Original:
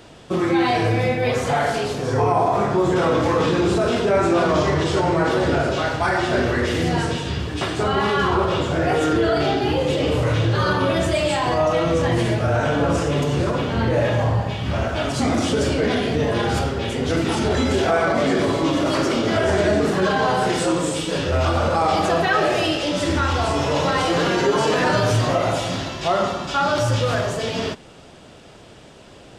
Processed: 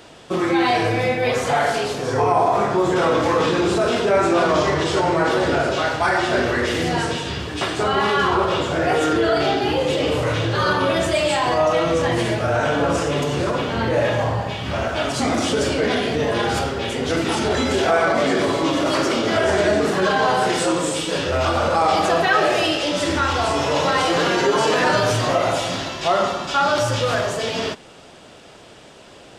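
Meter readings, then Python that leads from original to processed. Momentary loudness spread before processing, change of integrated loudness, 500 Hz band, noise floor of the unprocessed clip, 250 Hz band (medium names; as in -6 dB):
5 LU, +0.5 dB, +1.0 dB, -44 dBFS, -1.0 dB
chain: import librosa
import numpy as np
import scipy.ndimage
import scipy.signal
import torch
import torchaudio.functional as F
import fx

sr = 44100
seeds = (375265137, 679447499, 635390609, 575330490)

y = fx.low_shelf(x, sr, hz=240.0, db=-8.5)
y = y * 10.0 ** (2.5 / 20.0)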